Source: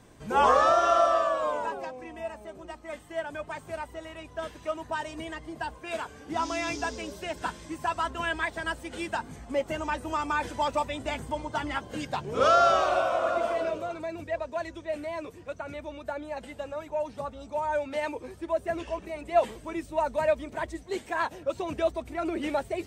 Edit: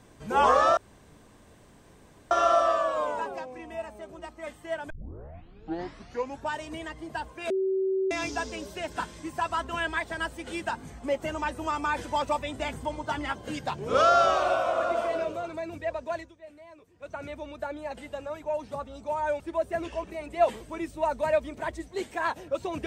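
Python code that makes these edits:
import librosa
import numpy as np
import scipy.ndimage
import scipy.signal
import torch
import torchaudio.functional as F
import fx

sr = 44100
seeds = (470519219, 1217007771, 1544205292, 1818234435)

y = fx.edit(x, sr, fx.insert_room_tone(at_s=0.77, length_s=1.54),
    fx.tape_start(start_s=3.36, length_s=1.65),
    fx.bleep(start_s=5.96, length_s=0.61, hz=382.0, db=-23.5),
    fx.fade_down_up(start_s=14.64, length_s=0.93, db=-15.0, fade_s=0.19, curve='qua'),
    fx.cut(start_s=17.86, length_s=0.49), tone=tone)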